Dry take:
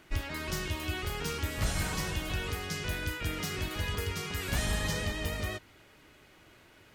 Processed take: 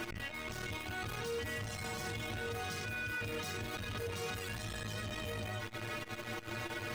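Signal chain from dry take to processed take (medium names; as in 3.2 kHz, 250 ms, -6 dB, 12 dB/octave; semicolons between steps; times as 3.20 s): 1.14–3.77 s: high-pass 47 Hz 12 dB/octave; power-law waveshaper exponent 0.5; inharmonic resonator 110 Hz, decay 0.22 s, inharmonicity 0.008; peak limiter -40.5 dBFS, peak gain reduction 17.5 dB; treble shelf 4.3 kHz -5.5 dB; transformer saturation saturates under 190 Hz; trim +10.5 dB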